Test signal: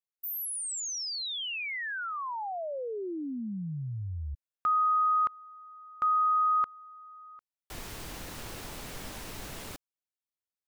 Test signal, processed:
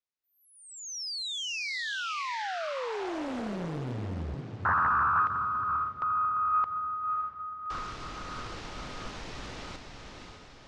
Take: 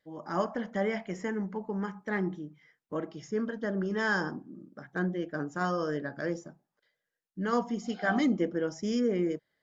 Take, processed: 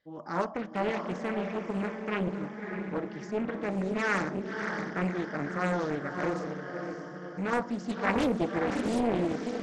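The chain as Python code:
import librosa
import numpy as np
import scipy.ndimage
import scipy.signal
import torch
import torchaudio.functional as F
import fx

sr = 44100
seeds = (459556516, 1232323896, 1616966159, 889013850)

y = scipy.signal.sosfilt(scipy.signal.butter(4, 5900.0, 'lowpass', fs=sr, output='sos'), x)
y = fx.echo_diffused(y, sr, ms=586, feedback_pct=51, wet_db=-5.0)
y = fx.doppler_dist(y, sr, depth_ms=0.93)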